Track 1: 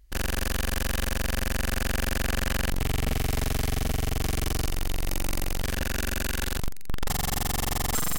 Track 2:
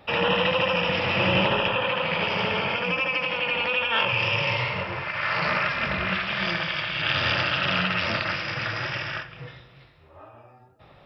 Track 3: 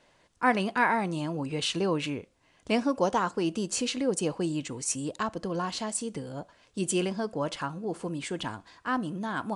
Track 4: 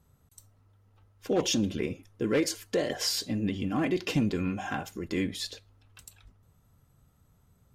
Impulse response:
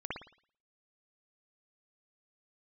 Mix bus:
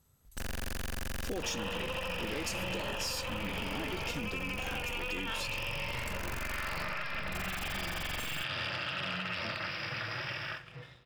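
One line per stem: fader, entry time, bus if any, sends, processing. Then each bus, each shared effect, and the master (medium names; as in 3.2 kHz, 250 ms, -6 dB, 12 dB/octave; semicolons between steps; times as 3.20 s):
-3.5 dB, 0.25 s, no send, hard clipper -32 dBFS, distortion -7 dB
-11.5 dB, 1.35 s, no send, treble shelf 5.1 kHz +6 dB; waveshaping leveller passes 1
mute
-13.0 dB, 0.00 s, no send, treble shelf 2.2 kHz +10 dB; sine folder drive 3 dB, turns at -8 dBFS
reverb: none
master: compression, threshold -33 dBFS, peak gain reduction 10 dB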